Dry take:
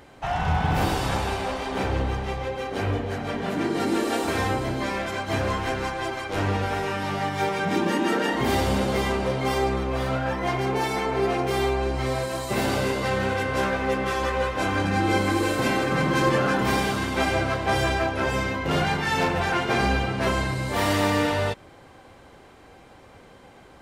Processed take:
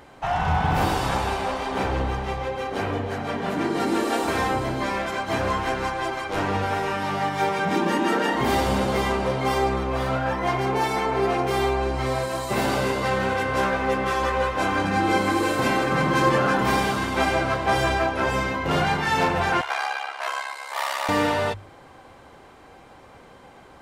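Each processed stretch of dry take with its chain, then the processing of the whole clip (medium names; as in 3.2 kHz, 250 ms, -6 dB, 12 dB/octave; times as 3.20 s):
19.61–21.09 s: high-pass 710 Hz 24 dB/octave + ring modulator 34 Hz
whole clip: peaking EQ 1 kHz +4 dB 1.2 oct; hum notches 50/100 Hz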